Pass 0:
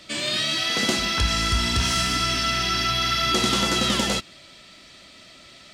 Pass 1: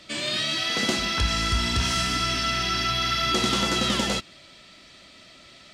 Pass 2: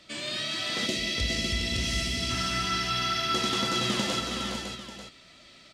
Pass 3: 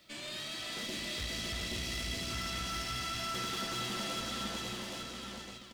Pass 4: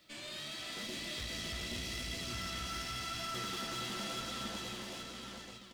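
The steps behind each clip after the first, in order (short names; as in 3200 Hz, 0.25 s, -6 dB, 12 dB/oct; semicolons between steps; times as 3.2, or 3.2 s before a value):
high shelf 8800 Hz -5.5 dB; gain -1.5 dB
on a send: tapped delay 0.188/0.412/0.555/0.891 s -9.5/-6/-6/-12 dB; on the sum: spectral gain 0.87–2.3, 710–1800 Hz -12 dB; gain -6 dB
tube stage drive 31 dB, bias 0.6; bit-crush 11-bit; echo 0.825 s -3 dB; gain -4.5 dB
flange 0.93 Hz, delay 5.7 ms, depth 9 ms, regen +69%; gain +1.5 dB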